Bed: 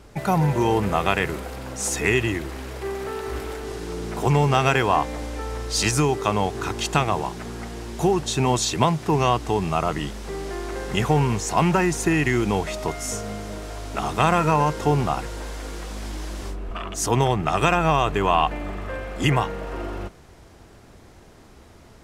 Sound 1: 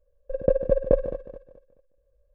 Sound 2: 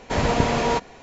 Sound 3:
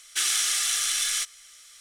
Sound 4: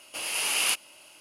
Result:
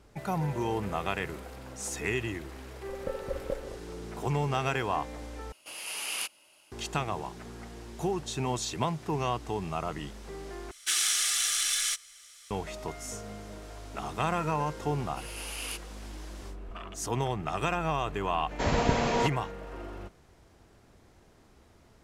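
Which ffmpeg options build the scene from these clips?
-filter_complex "[4:a]asplit=2[s0][s1];[0:a]volume=0.299,asplit=3[s2][s3][s4];[s2]atrim=end=5.524[s5];[s0]atrim=end=1.2,asetpts=PTS-STARTPTS,volume=0.376[s6];[s3]atrim=start=6.716:end=10.714[s7];[3:a]atrim=end=1.8,asetpts=PTS-STARTPTS,volume=0.75[s8];[s4]atrim=start=12.506[s9];[1:a]atrim=end=2.34,asetpts=PTS-STARTPTS,volume=0.188,afade=t=in:d=0.004:c=hsin,afade=t=out:st=2.336:d=0.004:c=hsin,adelay=2590[s10];[s1]atrim=end=1.2,asetpts=PTS-STARTPTS,volume=0.237,afade=t=in:d=0.004:c=hsin,afade=t=out:st=1.196:d=0.004:c=hsin,adelay=15020[s11];[2:a]atrim=end=1.02,asetpts=PTS-STARTPTS,volume=0.531,afade=t=in:d=0.004:c=hsin,afade=t=out:st=1.016:d=0.004:c=hsin,adelay=18490[s12];[s5][s6]acrossfade=d=0.004:c1=hsin:c2=hsin[s13];[s13][s7]acrossfade=d=0.004:c1=hsin:c2=hsin[s14];[s14][s8]acrossfade=d=0.004:c1=hsin:c2=hsin[s15];[s15][s9]acrossfade=d=0.004:c1=hsin:c2=hsin[s16];[s16][s10][s11][s12]amix=inputs=4:normalize=0"

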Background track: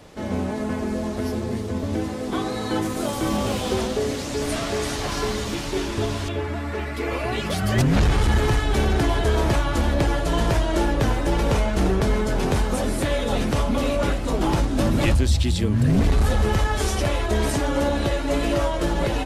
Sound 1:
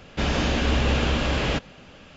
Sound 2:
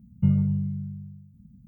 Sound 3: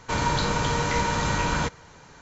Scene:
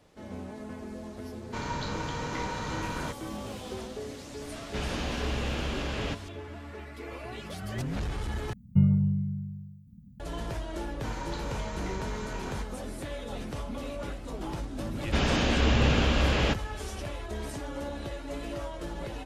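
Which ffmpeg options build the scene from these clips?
-filter_complex "[3:a]asplit=2[s0][s1];[1:a]asplit=2[s2][s3];[0:a]volume=0.188[s4];[s0]lowpass=6800[s5];[s4]asplit=2[s6][s7];[s6]atrim=end=8.534[s8];[2:a]atrim=end=1.67,asetpts=PTS-STARTPTS,volume=0.944[s9];[s7]atrim=start=10.196[s10];[s5]atrim=end=2.21,asetpts=PTS-STARTPTS,volume=0.316,afade=t=in:d=0.004:c=hsin,afade=t=out:st=2.206:d=0.004:c=hsin,adelay=1440[s11];[s2]atrim=end=2.16,asetpts=PTS-STARTPTS,volume=0.335,afade=t=in:d=0.004:c=hsin,afade=t=out:st=2.156:d=0.004:c=hsin,adelay=4560[s12];[s1]atrim=end=2.21,asetpts=PTS-STARTPTS,volume=0.168,afade=t=in:d=0.004:c=hsin,afade=t=out:st=2.206:d=0.004:c=hsin,adelay=10950[s13];[s3]atrim=end=2.16,asetpts=PTS-STARTPTS,volume=0.794,afade=t=in:d=0.004:c=hsin,afade=t=out:st=2.156:d=0.004:c=hsin,adelay=14950[s14];[s8][s9]acrossfade=d=0.004:c1=hsin:c2=hsin[s15];[s15][s10]acrossfade=d=0.004:c1=hsin:c2=hsin[s16];[s16][s11][s12][s13][s14]amix=inputs=5:normalize=0"

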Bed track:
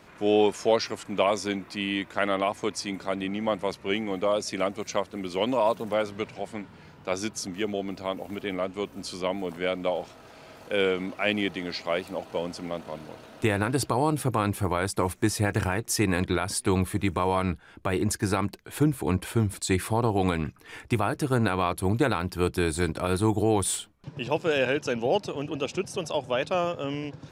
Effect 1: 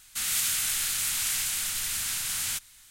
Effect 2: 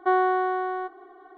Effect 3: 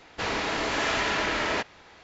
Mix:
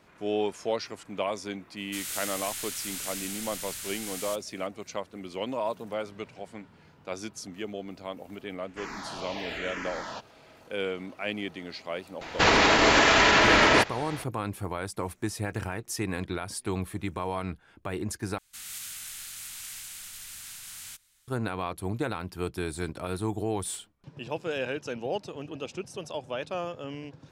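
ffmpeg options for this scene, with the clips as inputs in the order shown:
-filter_complex "[1:a]asplit=2[s0][s1];[3:a]asplit=2[s2][s3];[0:a]volume=0.447[s4];[s2]asplit=2[s5][s6];[s6]afreqshift=-1[s7];[s5][s7]amix=inputs=2:normalize=1[s8];[s3]alimiter=level_in=11.2:limit=0.891:release=50:level=0:latency=1[s9];[s4]asplit=2[s10][s11];[s10]atrim=end=18.384[s12];[s1]atrim=end=2.9,asetpts=PTS-STARTPTS,volume=0.237[s13];[s11]atrim=start=21.276[s14];[s0]atrim=end=2.9,asetpts=PTS-STARTPTS,volume=0.398,afade=t=in:d=0.004:c=hsin,afade=t=out:st=2.896:d=0.004:c=hsin,adelay=1770[s15];[s8]atrim=end=2.03,asetpts=PTS-STARTPTS,volume=0.422,afade=t=in:d=0.004:c=hsin,afade=t=out:st=2.026:d=0.004:c=hsin,adelay=378378S[s16];[s9]atrim=end=2.03,asetpts=PTS-STARTPTS,volume=0.335,afade=t=in:d=0.004:c=hsin,afade=t=out:st=2.026:d=0.004:c=hsin,adelay=12210[s17];[s12][s13]acrossfade=d=0.004:c1=hsin:c2=hsin[s18];[s18][s14]acrossfade=d=0.004:c1=hsin:c2=hsin[s19];[s19][s15][s16][s17]amix=inputs=4:normalize=0"

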